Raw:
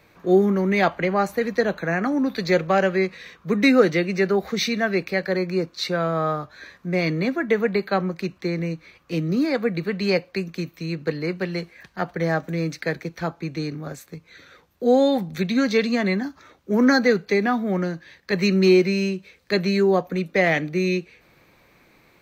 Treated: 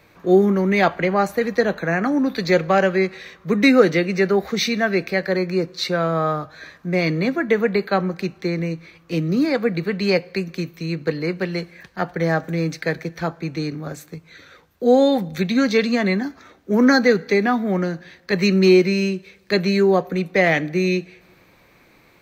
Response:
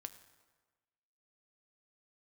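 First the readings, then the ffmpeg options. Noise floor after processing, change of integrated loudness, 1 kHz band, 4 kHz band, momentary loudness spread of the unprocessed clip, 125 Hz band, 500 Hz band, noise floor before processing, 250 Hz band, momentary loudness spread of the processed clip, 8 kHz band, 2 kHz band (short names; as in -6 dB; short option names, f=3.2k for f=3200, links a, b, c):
-54 dBFS, +2.5 dB, +2.5 dB, +2.5 dB, 12 LU, +2.5 dB, +2.5 dB, -58 dBFS, +2.5 dB, 12 LU, +2.5 dB, +2.5 dB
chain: -filter_complex "[0:a]asplit=2[a][b];[1:a]atrim=start_sample=2205[c];[b][c]afir=irnorm=-1:irlink=0,volume=-4.5dB[d];[a][d]amix=inputs=2:normalize=0"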